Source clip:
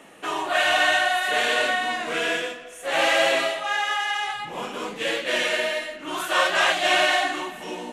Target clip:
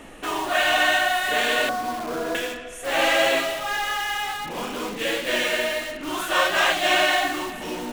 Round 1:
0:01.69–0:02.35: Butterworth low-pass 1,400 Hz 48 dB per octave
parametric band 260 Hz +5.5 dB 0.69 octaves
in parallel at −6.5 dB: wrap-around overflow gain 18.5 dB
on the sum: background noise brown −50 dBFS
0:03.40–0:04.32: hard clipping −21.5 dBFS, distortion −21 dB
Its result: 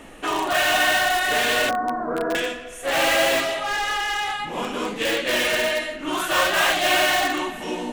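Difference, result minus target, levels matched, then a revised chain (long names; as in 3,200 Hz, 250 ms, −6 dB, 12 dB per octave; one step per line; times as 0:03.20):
wrap-around overflow: distortion −26 dB
0:01.69–0:02.35: Butterworth low-pass 1,400 Hz 48 dB per octave
parametric band 260 Hz +5.5 dB 0.69 octaves
in parallel at −6.5 dB: wrap-around overflow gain 29 dB
on the sum: background noise brown −50 dBFS
0:03.40–0:04.32: hard clipping −21.5 dBFS, distortion −24 dB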